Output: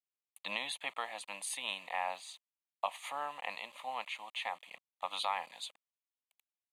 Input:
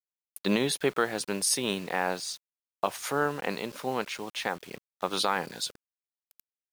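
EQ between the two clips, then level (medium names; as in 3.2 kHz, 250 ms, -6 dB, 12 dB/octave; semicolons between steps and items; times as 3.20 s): high-pass 690 Hz 12 dB/octave; low-pass 7.2 kHz 12 dB/octave; static phaser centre 1.5 kHz, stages 6; -2.5 dB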